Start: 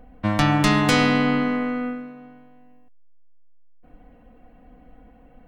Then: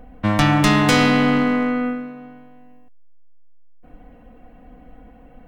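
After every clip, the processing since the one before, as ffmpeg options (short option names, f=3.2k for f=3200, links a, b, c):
-filter_complex "[0:a]bandreject=f=4.4k:w=19,asplit=2[a][b];[b]aeval=exprs='0.1*(abs(mod(val(0)/0.1+3,4)-2)-1)':c=same,volume=-10dB[c];[a][c]amix=inputs=2:normalize=0,volume=2.5dB"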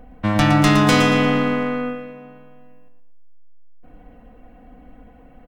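-af "aecho=1:1:115|230|345|460:0.398|0.135|0.046|0.0156,volume=-1dB"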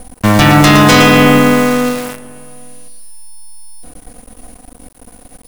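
-af "aeval=exprs='val(0)+0.00355*sin(2*PI*9700*n/s)':c=same,apsyclip=13dB,acrusher=bits=4:dc=4:mix=0:aa=0.000001,volume=-2dB"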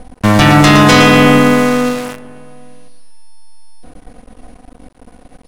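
-af "adynamicsmooth=sensitivity=3.5:basefreq=4.3k"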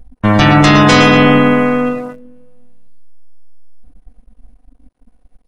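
-af "afftdn=nr=21:nf=-22,volume=-1dB"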